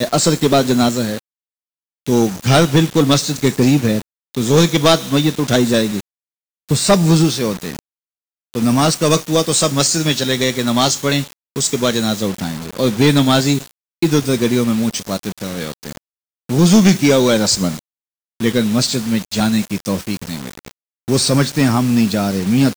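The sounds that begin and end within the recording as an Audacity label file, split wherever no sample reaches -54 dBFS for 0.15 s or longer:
2.060000	4.020000	sound
4.340000	6.010000	sound
6.690000	7.790000	sound
8.540000	11.330000	sound
11.560000	13.710000	sound
14.020000	15.970000	sound
16.490000	17.790000	sound
18.400000	20.710000	sound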